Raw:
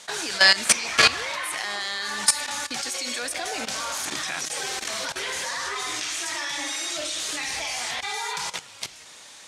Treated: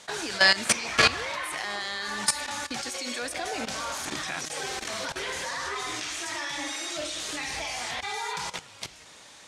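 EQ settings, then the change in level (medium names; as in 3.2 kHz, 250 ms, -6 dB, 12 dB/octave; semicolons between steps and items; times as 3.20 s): tilt EQ -1.5 dB/octave; -1.5 dB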